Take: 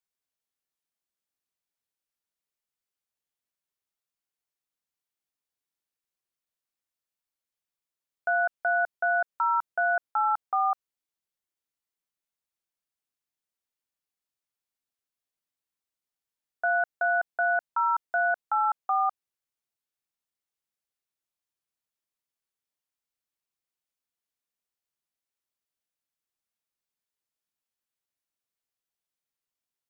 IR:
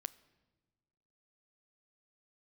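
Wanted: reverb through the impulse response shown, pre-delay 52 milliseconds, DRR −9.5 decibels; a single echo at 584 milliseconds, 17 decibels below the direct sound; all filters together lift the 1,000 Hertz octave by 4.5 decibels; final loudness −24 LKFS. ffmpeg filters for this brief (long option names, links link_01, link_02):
-filter_complex "[0:a]equalizer=frequency=1000:width_type=o:gain=6.5,aecho=1:1:584:0.141,asplit=2[link_01][link_02];[1:a]atrim=start_sample=2205,adelay=52[link_03];[link_02][link_03]afir=irnorm=-1:irlink=0,volume=12.5dB[link_04];[link_01][link_04]amix=inputs=2:normalize=0,volume=-11dB"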